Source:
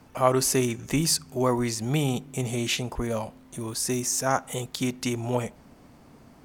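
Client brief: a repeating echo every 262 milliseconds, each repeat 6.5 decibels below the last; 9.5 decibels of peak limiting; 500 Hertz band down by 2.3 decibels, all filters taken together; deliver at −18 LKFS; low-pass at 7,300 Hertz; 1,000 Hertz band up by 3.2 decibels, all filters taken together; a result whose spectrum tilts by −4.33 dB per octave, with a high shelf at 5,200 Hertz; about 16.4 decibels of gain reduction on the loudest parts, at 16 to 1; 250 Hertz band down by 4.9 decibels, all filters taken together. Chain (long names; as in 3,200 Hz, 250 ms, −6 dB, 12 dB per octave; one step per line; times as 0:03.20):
low-pass filter 7,300 Hz
parametric band 250 Hz −5.5 dB
parametric band 500 Hz −3 dB
parametric band 1,000 Hz +5.5 dB
high-shelf EQ 5,200 Hz −7.5 dB
downward compressor 16 to 1, threshold −30 dBFS
brickwall limiter −26 dBFS
repeating echo 262 ms, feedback 47%, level −6.5 dB
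level +18 dB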